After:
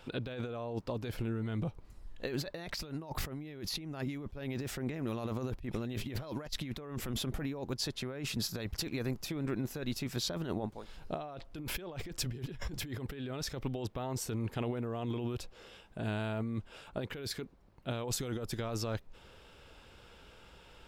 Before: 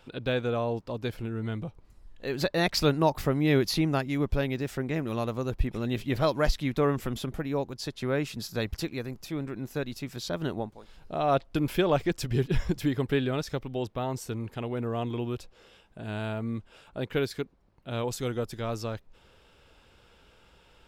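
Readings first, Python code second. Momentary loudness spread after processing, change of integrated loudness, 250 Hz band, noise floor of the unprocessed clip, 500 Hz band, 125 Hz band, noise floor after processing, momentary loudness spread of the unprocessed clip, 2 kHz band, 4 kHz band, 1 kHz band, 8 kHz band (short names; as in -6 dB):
14 LU, -8.0 dB, -8.0 dB, -60 dBFS, -11.0 dB, -7.0 dB, -58 dBFS, 11 LU, -9.0 dB, -4.0 dB, -11.5 dB, 0.0 dB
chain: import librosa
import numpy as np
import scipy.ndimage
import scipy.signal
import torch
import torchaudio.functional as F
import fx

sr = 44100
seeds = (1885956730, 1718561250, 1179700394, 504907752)

y = fx.over_compress(x, sr, threshold_db=-35.0, ratio=-1.0)
y = y * 10.0 ** (-3.0 / 20.0)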